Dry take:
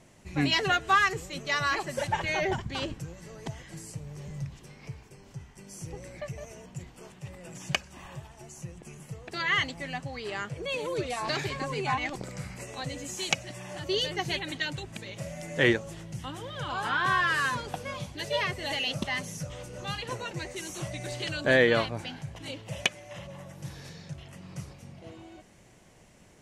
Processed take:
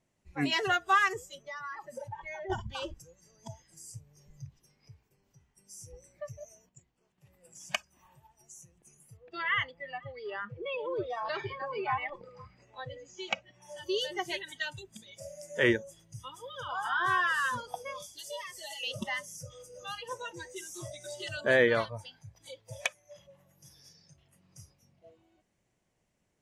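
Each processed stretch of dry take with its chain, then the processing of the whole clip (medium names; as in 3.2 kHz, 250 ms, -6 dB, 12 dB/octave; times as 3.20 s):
1.35–2.50 s: treble shelf 2.7 kHz -7.5 dB + compression 10:1, threshold -33 dBFS
6.69–7.18 s: low-pass 8.3 kHz + gate -39 dBFS, range -7 dB
9.17–13.62 s: low-pass 3.4 kHz + delay 489 ms -20 dB
18.02–18.83 s: tone controls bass -6 dB, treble +10 dB + compression 3:1, threshold -35 dBFS
21.68–23.16 s: peaking EQ 270 Hz -5.5 dB 0.91 oct + band-stop 2.9 kHz, Q 8.1
whole clip: spectral noise reduction 19 dB; dynamic bell 4.3 kHz, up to -5 dB, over -46 dBFS, Q 1.1; trim -1.5 dB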